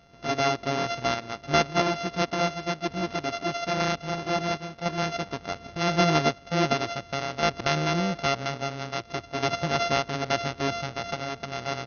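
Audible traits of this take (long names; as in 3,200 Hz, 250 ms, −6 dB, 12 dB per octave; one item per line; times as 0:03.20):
a buzz of ramps at a fixed pitch in blocks of 64 samples
sample-and-hold tremolo
MP2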